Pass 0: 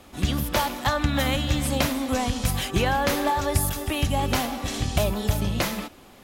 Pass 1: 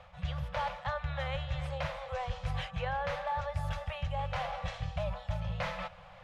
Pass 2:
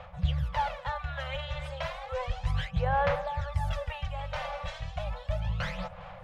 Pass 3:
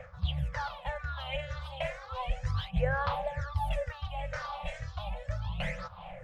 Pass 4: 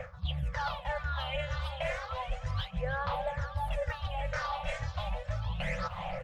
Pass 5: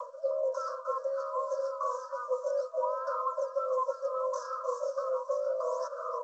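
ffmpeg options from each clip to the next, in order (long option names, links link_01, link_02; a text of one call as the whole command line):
ffmpeg -i in.wav -af "lowpass=2500,areverse,acompressor=threshold=-31dB:ratio=6,areverse,afftfilt=real='re*(1-between(b*sr/4096,190,480))':imag='im*(1-between(b*sr/4096,190,480))':win_size=4096:overlap=0.75" out.wav
ffmpeg -i in.wav -af "aphaser=in_gain=1:out_gain=1:delay=3.4:decay=0.64:speed=0.33:type=sinusoidal" out.wav
ffmpeg -i in.wav -af "afftfilt=real='re*pow(10,16/40*sin(2*PI*(0.52*log(max(b,1)*sr/1024/100)/log(2)-(-2.1)*(pts-256)/sr)))':imag='im*pow(10,16/40*sin(2*PI*(0.52*log(max(b,1)*sr/1024/100)/log(2)-(-2.1)*(pts-256)/sr)))':win_size=1024:overlap=0.75,volume=-4.5dB" out.wav
ffmpeg -i in.wav -af "areverse,acompressor=threshold=-39dB:ratio=6,areverse,aecho=1:1:306|612|918|1224|1530|1836:0.178|0.101|0.0578|0.0329|0.0188|0.0107,volume=8dB" out.wav
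ffmpeg -i in.wav -af "afreqshift=470,asuperstop=centerf=2700:order=12:qfactor=0.65,volume=2.5dB" -ar 16000 -c:a g722 out.g722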